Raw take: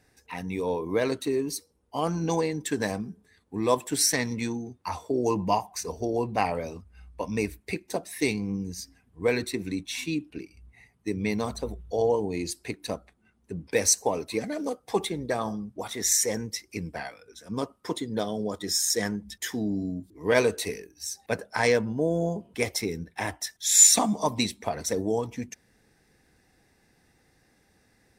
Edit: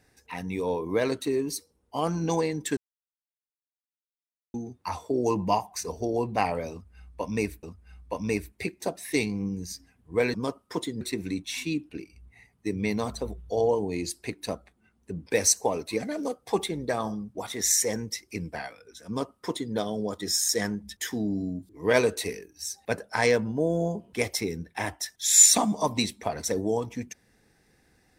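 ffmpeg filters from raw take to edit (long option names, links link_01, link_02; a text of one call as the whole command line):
ffmpeg -i in.wav -filter_complex "[0:a]asplit=6[link_01][link_02][link_03][link_04][link_05][link_06];[link_01]atrim=end=2.77,asetpts=PTS-STARTPTS,afade=type=out:start_time=2.766:duration=0.004:curve=hsin[link_07];[link_02]atrim=start=2.77:end=4.54,asetpts=PTS-STARTPTS,volume=0[link_08];[link_03]atrim=start=4.54:end=7.632,asetpts=PTS-STARTPTS,afade=type=in:duration=0.004:curve=hsin[link_09];[link_04]atrim=start=6.708:end=9.422[link_10];[link_05]atrim=start=17.478:end=18.152[link_11];[link_06]atrim=start=9.418[link_12];[link_07][link_08][link_09]concat=n=3:v=0:a=1[link_13];[link_13][link_10]acrossfade=duration=0.004:curve1=hsin:curve2=hsin[link_14];[link_14][link_11]acrossfade=duration=0.004:curve1=hsin:curve2=hsin[link_15];[link_15][link_12]acrossfade=duration=0.004:curve1=hsin:curve2=hsin" out.wav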